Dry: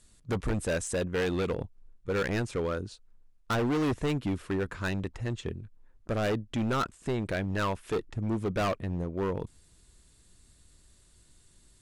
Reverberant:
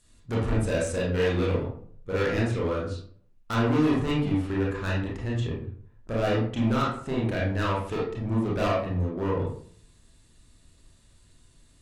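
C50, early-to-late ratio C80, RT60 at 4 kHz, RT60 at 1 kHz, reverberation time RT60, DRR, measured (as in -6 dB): 2.5 dB, 8.0 dB, 0.30 s, 0.50 s, 0.55 s, -5.0 dB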